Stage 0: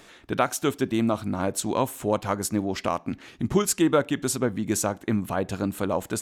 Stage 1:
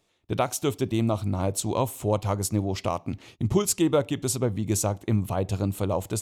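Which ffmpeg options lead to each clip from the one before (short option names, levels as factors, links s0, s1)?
-af "agate=range=0.126:threshold=0.00501:ratio=16:detection=peak,equalizer=f=100:t=o:w=0.67:g=9,equalizer=f=250:t=o:w=0.67:g=-4,equalizer=f=1600:t=o:w=0.67:g=-11"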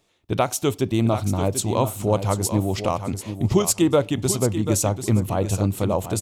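-af "aecho=1:1:739|1478|2217:0.316|0.0632|0.0126,volume=1.58"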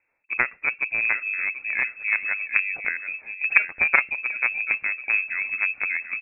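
-af "aeval=exprs='0.501*(cos(1*acos(clip(val(0)/0.501,-1,1)))-cos(1*PI/2))+0.2*(cos(3*acos(clip(val(0)/0.501,-1,1)))-cos(3*PI/2))+0.0501*(cos(5*acos(clip(val(0)/0.501,-1,1)))-cos(5*PI/2))':c=same,lowpass=f=2300:t=q:w=0.5098,lowpass=f=2300:t=q:w=0.6013,lowpass=f=2300:t=q:w=0.9,lowpass=f=2300:t=q:w=2.563,afreqshift=-2700,volume=1.88"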